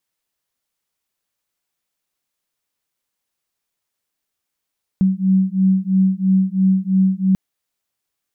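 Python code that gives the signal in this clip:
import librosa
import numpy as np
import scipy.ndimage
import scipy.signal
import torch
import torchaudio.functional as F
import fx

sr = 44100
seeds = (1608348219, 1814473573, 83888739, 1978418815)

y = fx.two_tone_beats(sr, length_s=2.34, hz=188.0, beat_hz=3.0, level_db=-16.0)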